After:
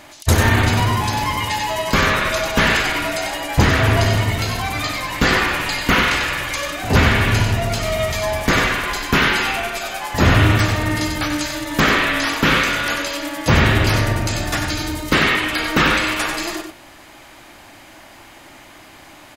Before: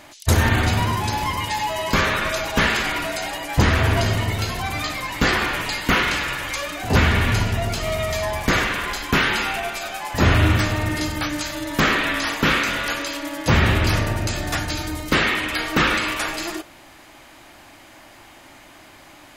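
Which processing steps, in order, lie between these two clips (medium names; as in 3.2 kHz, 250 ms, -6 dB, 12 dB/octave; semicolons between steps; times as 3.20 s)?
delay 94 ms -6.5 dB; trim +2.5 dB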